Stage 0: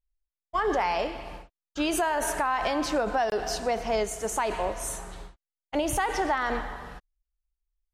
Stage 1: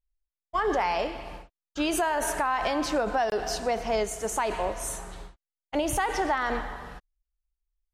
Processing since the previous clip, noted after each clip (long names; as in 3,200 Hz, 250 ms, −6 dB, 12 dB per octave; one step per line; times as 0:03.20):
no processing that can be heard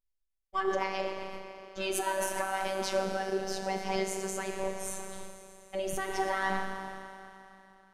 rotating-speaker cabinet horn 8 Hz, later 0.8 Hz, at 0:02.08
four-comb reverb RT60 3.1 s, combs from 29 ms, DRR 6 dB
phases set to zero 192 Hz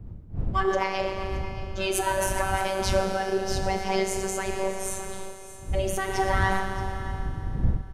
wind on the microphone 83 Hz −37 dBFS
single-tap delay 623 ms −15.5 dB
level +5.5 dB